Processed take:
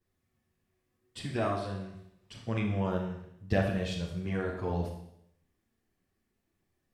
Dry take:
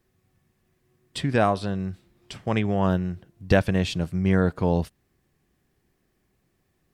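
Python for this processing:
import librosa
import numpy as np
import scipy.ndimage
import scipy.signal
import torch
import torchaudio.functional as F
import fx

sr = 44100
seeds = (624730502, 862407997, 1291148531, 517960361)

y = fx.chorus_voices(x, sr, voices=2, hz=0.83, base_ms=11, depth_ms=2.3, mix_pct=65)
y = fx.rev_schroeder(y, sr, rt60_s=0.75, comb_ms=27, drr_db=2.0)
y = y * librosa.db_to_amplitude(-8.0)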